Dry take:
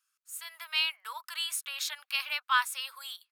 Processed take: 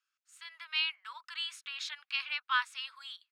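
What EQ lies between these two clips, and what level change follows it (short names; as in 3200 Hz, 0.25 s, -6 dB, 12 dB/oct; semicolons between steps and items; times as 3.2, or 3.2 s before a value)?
HPF 1300 Hz 12 dB/oct; air absorption 140 m; 0.0 dB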